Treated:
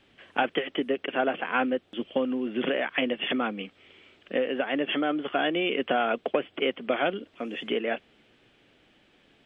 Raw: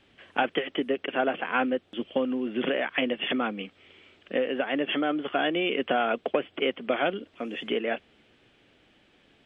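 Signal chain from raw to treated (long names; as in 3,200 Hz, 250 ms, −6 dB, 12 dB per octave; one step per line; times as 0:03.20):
parametric band 77 Hz −7 dB 0.3 octaves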